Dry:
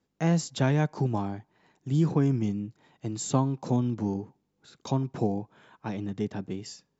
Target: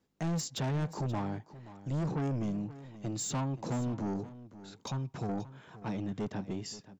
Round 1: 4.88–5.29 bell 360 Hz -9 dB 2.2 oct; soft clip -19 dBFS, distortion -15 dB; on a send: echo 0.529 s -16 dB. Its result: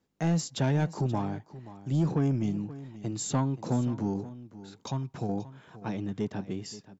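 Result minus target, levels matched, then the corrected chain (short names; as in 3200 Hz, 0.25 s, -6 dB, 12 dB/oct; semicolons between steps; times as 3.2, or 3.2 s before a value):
soft clip: distortion -9 dB
4.88–5.29 bell 360 Hz -9 dB 2.2 oct; soft clip -29.5 dBFS, distortion -6 dB; on a send: echo 0.529 s -16 dB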